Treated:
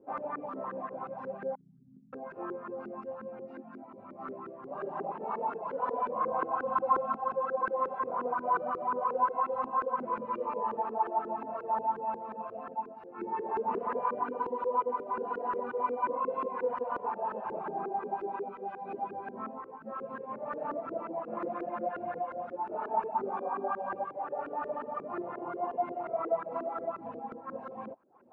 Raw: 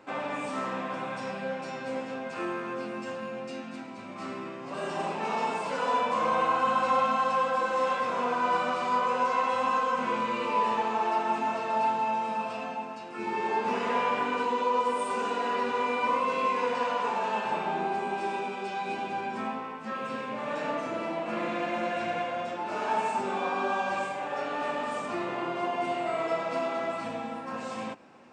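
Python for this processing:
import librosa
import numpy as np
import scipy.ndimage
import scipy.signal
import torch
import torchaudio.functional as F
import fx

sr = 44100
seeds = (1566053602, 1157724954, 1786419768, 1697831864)

y = fx.dereverb_blind(x, sr, rt60_s=0.68)
y = fx.cheby2_bandstop(y, sr, low_hz=470.0, high_hz=5700.0, order=4, stop_db=50, at=(1.55, 2.13))
y = fx.filter_lfo_lowpass(y, sr, shape='saw_up', hz=5.6, low_hz=360.0, high_hz=1500.0, q=3.7)
y = y * librosa.db_to_amplitude(-8.0)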